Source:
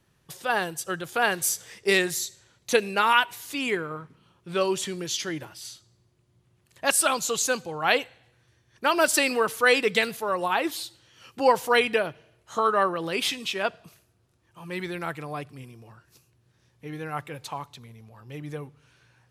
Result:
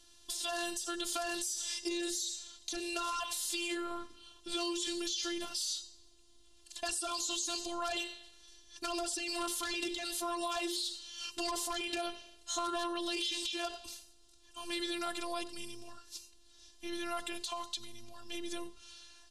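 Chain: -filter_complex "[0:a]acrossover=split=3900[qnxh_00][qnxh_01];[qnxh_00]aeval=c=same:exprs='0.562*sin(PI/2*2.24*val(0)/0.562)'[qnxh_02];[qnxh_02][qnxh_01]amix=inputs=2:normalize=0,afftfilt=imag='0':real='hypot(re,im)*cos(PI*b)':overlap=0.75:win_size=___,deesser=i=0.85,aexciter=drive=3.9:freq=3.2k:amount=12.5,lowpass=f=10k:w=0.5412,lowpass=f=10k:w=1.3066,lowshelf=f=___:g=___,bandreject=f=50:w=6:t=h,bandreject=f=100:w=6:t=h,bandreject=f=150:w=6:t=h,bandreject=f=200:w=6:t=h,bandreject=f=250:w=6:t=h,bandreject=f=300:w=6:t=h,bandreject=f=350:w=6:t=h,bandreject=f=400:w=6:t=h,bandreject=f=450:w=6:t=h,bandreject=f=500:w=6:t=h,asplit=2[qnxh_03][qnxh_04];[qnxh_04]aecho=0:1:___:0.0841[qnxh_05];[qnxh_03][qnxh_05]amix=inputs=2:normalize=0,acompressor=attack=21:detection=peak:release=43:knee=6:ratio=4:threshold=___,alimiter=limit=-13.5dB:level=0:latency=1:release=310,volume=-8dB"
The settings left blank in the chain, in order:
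512, 98, 8.5, 91, -31dB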